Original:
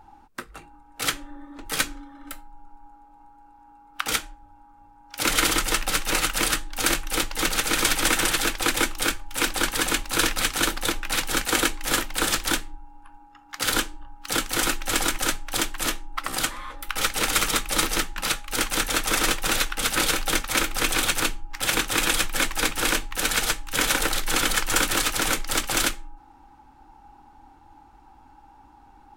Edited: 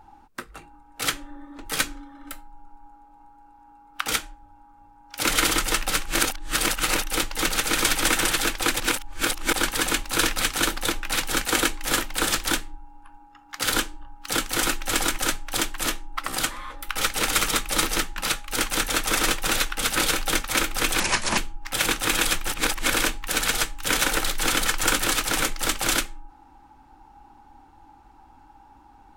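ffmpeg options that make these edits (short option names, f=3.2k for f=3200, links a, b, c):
-filter_complex "[0:a]asplit=9[a][b][c][d][e][f][g][h][i];[a]atrim=end=6.052[j];[b]atrim=start=6.048:end=7.042,asetpts=PTS-STARTPTS,areverse[k];[c]atrim=start=7.038:end=8.802[l];[d]atrim=start=8.798:end=9.532,asetpts=PTS-STARTPTS,areverse[m];[e]atrim=start=9.528:end=21.004[n];[f]atrim=start=21:end=21.26,asetpts=PTS-STARTPTS,asetrate=30429,aresample=44100,atrim=end_sample=16617,asetpts=PTS-STARTPTS[o];[g]atrim=start=21.256:end=22.362[p];[h]atrim=start=22.358:end=22.822,asetpts=PTS-STARTPTS,areverse[q];[i]atrim=start=22.818[r];[j][k]acrossfade=d=0.004:c1=hsin:c2=hsin[s];[s][l]acrossfade=d=0.004:c1=hsin:c2=hsin[t];[t][m]acrossfade=d=0.004:c1=hsin:c2=hsin[u];[u][n]acrossfade=d=0.004:c1=hsin:c2=hsin[v];[v][o]acrossfade=d=0.004:c1=hsin:c2=hsin[w];[w][p]acrossfade=d=0.004:c1=hsin:c2=hsin[x];[x][q]acrossfade=d=0.004:c1=hsin:c2=hsin[y];[y][r]acrossfade=d=0.004:c1=hsin:c2=hsin"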